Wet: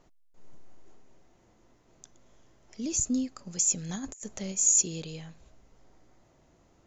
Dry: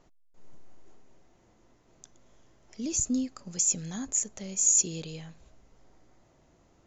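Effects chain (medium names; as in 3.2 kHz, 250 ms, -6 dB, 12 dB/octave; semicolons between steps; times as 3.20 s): 3.89–4.52 s: compressor with a negative ratio -36 dBFS, ratio -0.5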